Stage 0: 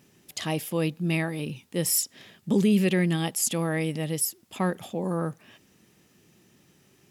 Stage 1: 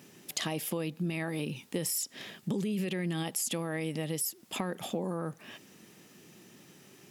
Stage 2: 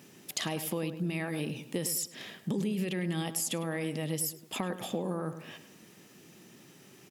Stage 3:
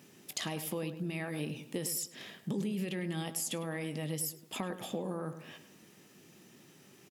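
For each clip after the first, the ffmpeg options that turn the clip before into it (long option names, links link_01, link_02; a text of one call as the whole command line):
ffmpeg -i in.wav -af "highpass=150,alimiter=limit=-20dB:level=0:latency=1:release=32,acompressor=threshold=-36dB:ratio=5,volume=5.5dB" out.wav
ffmpeg -i in.wav -filter_complex "[0:a]asplit=2[link_01][link_02];[link_02]adelay=103,lowpass=frequency=1900:poles=1,volume=-10dB,asplit=2[link_03][link_04];[link_04]adelay=103,lowpass=frequency=1900:poles=1,volume=0.41,asplit=2[link_05][link_06];[link_06]adelay=103,lowpass=frequency=1900:poles=1,volume=0.41,asplit=2[link_07][link_08];[link_08]adelay=103,lowpass=frequency=1900:poles=1,volume=0.41[link_09];[link_01][link_03][link_05][link_07][link_09]amix=inputs=5:normalize=0" out.wav
ffmpeg -i in.wav -filter_complex "[0:a]asplit=2[link_01][link_02];[link_02]adelay=20,volume=-13.5dB[link_03];[link_01][link_03]amix=inputs=2:normalize=0,volume=-3.5dB" out.wav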